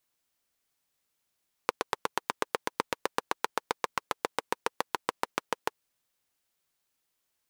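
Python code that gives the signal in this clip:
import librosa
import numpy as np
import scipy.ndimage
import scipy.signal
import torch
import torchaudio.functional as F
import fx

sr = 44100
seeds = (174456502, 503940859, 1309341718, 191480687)

y = fx.engine_single_rev(sr, seeds[0], length_s=4.13, rpm=1000, resonances_hz=(480.0, 920.0), end_rpm=800)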